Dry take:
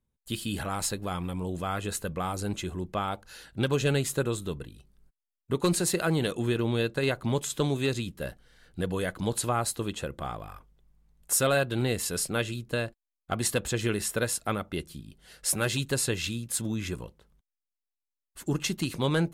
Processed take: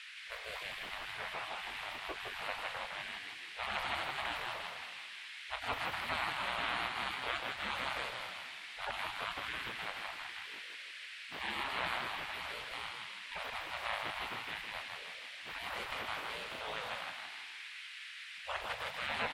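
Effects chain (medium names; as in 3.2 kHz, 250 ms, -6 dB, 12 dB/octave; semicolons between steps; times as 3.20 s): coarse spectral quantiser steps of 30 dB; high-pass 110 Hz 12 dB/octave; spectral gate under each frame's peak -30 dB weak; peak limiter -32.5 dBFS, peak gain reduction 8 dB; transient shaper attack -3 dB, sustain +8 dB; band noise 1.8–10 kHz -54 dBFS; distance through air 490 m; frequency-shifting echo 160 ms, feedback 54%, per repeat +61 Hz, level -4 dB; trim +17 dB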